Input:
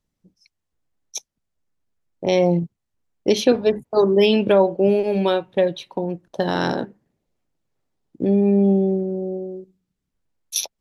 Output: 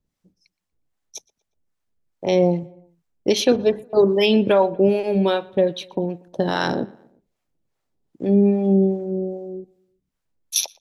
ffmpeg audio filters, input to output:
-filter_complex "[0:a]acrossover=split=590[a][b];[a]aeval=exprs='val(0)*(1-0.7/2+0.7/2*cos(2*PI*2.5*n/s))':c=same[c];[b]aeval=exprs='val(0)*(1-0.7/2-0.7/2*cos(2*PI*2.5*n/s))':c=same[d];[c][d]amix=inputs=2:normalize=0,asplit=2[e][f];[f]adelay=119,lowpass=f=3.3k:p=1,volume=-23.5dB,asplit=2[g][h];[h]adelay=119,lowpass=f=3.3k:p=1,volume=0.51,asplit=2[i][j];[j]adelay=119,lowpass=f=3.3k:p=1,volume=0.51[k];[e][g][i][k]amix=inputs=4:normalize=0,volume=3dB"

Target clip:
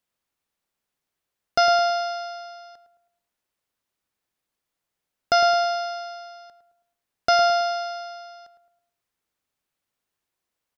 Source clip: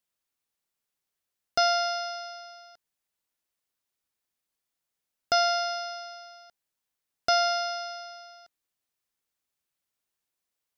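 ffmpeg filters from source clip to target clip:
-filter_complex "[0:a]highshelf=f=3.5k:g=-7,asplit=2[a][b];[b]adelay=108,lowpass=f=1.3k:p=1,volume=-8.5dB,asplit=2[c][d];[d]adelay=108,lowpass=f=1.3k:p=1,volume=0.46,asplit=2[e][f];[f]adelay=108,lowpass=f=1.3k:p=1,volume=0.46,asplit=2[g][h];[h]adelay=108,lowpass=f=1.3k:p=1,volume=0.46,asplit=2[i][j];[j]adelay=108,lowpass=f=1.3k:p=1,volume=0.46[k];[a][c][e][g][i][k]amix=inputs=6:normalize=0,volume=6dB"

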